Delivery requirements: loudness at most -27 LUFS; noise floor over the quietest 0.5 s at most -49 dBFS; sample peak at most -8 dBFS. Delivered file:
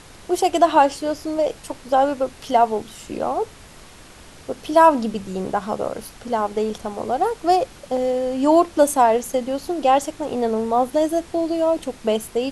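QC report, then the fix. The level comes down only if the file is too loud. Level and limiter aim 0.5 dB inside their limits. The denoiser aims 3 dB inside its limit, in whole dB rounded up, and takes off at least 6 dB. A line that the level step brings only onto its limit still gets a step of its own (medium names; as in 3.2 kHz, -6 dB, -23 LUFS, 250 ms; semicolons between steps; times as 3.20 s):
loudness -20.5 LUFS: fail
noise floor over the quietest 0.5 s -44 dBFS: fail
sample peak -3.0 dBFS: fail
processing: trim -7 dB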